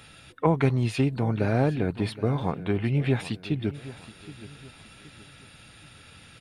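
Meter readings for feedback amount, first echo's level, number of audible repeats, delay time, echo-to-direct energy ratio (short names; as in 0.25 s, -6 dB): 37%, -16.5 dB, 3, 0.772 s, -16.0 dB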